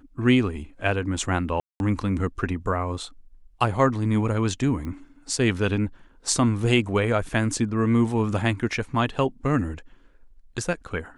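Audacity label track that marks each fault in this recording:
1.600000	1.800000	drop-out 201 ms
4.850000	4.850000	click −23 dBFS

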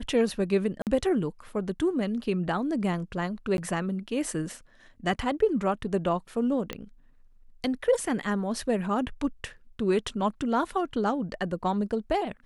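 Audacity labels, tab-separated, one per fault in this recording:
0.820000	0.870000	drop-out 48 ms
3.570000	3.580000	drop-out 11 ms
6.730000	6.730000	click −18 dBFS

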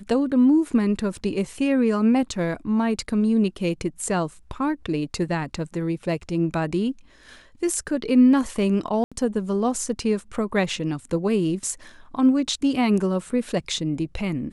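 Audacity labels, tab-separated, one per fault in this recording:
1.180000	1.180000	drop-out 2.8 ms
9.040000	9.120000	drop-out 76 ms

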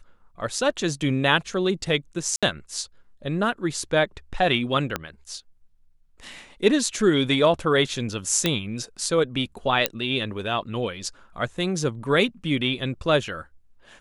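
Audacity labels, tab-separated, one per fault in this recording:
2.360000	2.430000	drop-out 66 ms
4.960000	4.960000	click −10 dBFS
8.460000	8.460000	click −6 dBFS
9.860000	9.860000	click −3 dBFS

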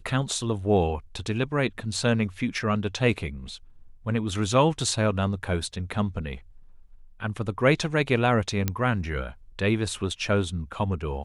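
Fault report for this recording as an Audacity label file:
8.680000	8.680000	click −10 dBFS

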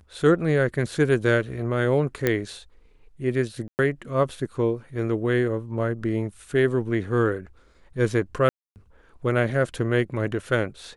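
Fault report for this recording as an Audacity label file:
2.270000	2.270000	click −8 dBFS
3.680000	3.790000	drop-out 109 ms
8.490000	8.760000	drop-out 269 ms

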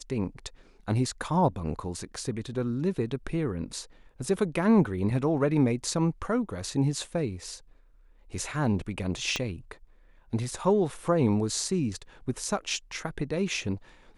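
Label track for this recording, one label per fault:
9.360000	9.360000	click −14 dBFS

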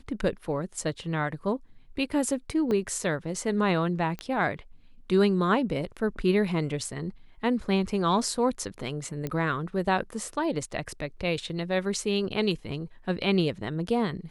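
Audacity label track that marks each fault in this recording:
2.710000	2.710000	drop-out 2.4 ms
4.190000	4.190000	click −21 dBFS
9.270000	9.270000	click −18 dBFS

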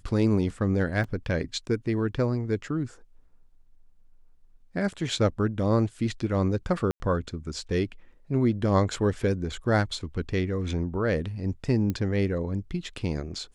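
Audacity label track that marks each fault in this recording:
1.040000	1.040000	drop-out 4.1 ms
6.910000	7.000000	drop-out 90 ms
11.900000	11.900000	click −17 dBFS

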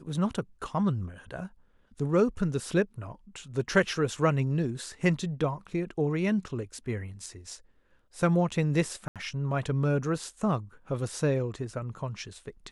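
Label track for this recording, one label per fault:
9.080000	9.160000	drop-out 77 ms

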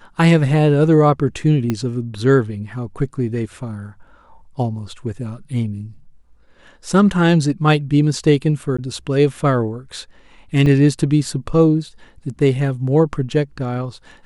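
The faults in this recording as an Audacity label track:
1.700000	1.700000	click −8 dBFS
8.770000	8.790000	drop-out 15 ms
10.660000	10.660000	drop-out 4.3 ms

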